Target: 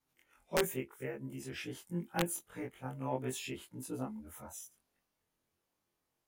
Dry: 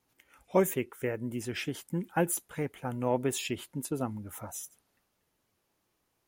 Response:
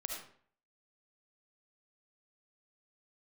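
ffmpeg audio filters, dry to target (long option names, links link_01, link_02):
-af "afftfilt=real='re':imag='-im':win_size=2048:overlap=0.75,aeval=exprs='(mod(7.5*val(0)+1,2)-1)/7.5':channel_layout=same,volume=-3dB"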